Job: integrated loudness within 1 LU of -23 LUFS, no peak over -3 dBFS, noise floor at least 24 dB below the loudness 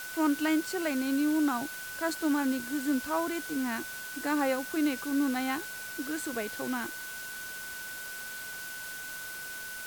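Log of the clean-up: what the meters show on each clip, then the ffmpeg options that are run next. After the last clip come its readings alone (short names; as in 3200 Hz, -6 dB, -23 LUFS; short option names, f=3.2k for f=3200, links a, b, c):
steady tone 1500 Hz; tone level -40 dBFS; noise floor -41 dBFS; noise floor target -56 dBFS; loudness -32.0 LUFS; peak -16.5 dBFS; loudness target -23.0 LUFS
-> -af "bandreject=f=1.5k:w=30"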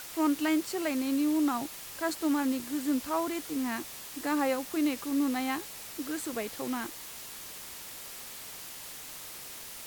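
steady tone none; noise floor -44 dBFS; noise floor target -57 dBFS
-> -af "afftdn=nr=13:nf=-44"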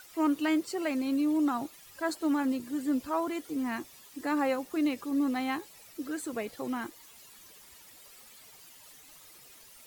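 noise floor -54 dBFS; noise floor target -56 dBFS
-> -af "afftdn=nr=6:nf=-54"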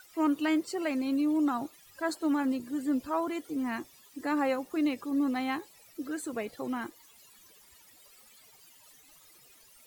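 noise floor -58 dBFS; loudness -31.5 LUFS; peak -17.0 dBFS; loudness target -23.0 LUFS
-> -af "volume=8.5dB"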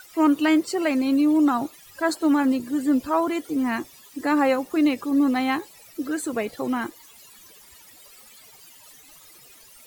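loudness -23.0 LUFS; peak -8.5 dBFS; noise floor -50 dBFS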